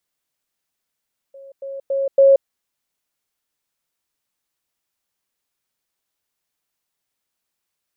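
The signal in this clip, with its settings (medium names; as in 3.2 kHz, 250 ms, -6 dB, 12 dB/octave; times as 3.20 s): level ladder 547 Hz -37.5 dBFS, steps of 10 dB, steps 4, 0.18 s 0.10 s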